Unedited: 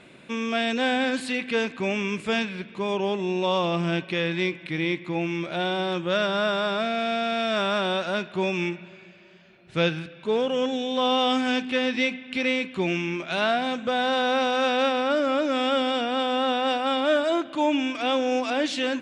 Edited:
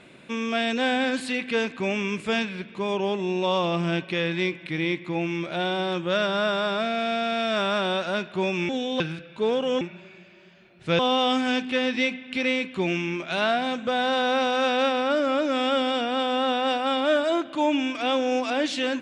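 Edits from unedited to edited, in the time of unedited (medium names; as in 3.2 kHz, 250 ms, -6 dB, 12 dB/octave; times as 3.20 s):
8.69–9.87 s: swap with 10.68–10.99 s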